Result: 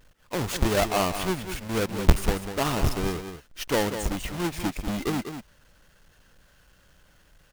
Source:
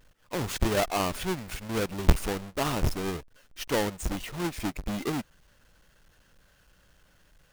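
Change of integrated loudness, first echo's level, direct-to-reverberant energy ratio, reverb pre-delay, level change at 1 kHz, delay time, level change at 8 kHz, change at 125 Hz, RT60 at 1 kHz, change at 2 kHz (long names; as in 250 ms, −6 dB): +3.0 dB, −9.0 dB, no reverb audible, no reverb audible, +3.0 dB, 195 ms, +3.0 dB, +3.0 dB, no reverb audible, +3.0 dB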